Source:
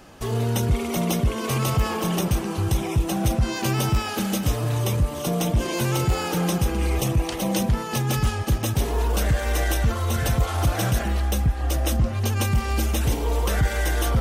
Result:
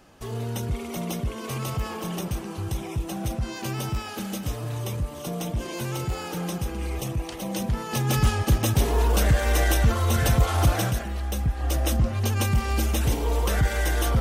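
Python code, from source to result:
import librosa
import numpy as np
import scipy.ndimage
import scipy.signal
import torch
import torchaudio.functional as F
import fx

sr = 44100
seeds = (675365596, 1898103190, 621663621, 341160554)

y = fx.gain(x, sr, db=fx.line((7.49, -7.0), (8.24, 1.5), (10.71, 1.5), (11.08, -7.5), (11.74, -1.0)))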